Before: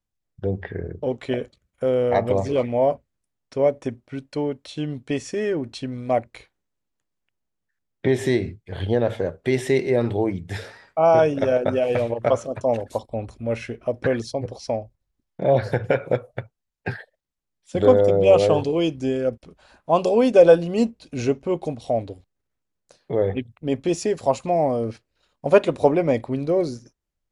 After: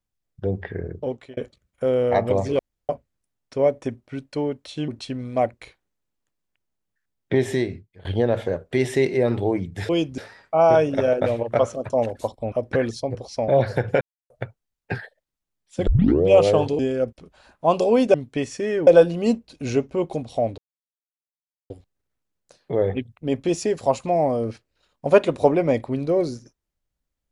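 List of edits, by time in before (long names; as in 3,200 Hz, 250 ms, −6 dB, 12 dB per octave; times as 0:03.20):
0:00.98–0:01.37: fade out
0:02.59–0:02.89: fill with room tone
0:04.88–0:05.61: move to 0:20.39
0:08.14–0:08.78: fade out, to −18 dB
0:11.70–0:11.97: remove
0:13.23–0:13.83: remove
0:14.79–0:15.44: remove
0:15.97–0:16.26: silence
0:17.83: tape start 0.39 s
0:18.75–0:19.04: move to 0:10.62
0:22.10: splice in silence 1.12 s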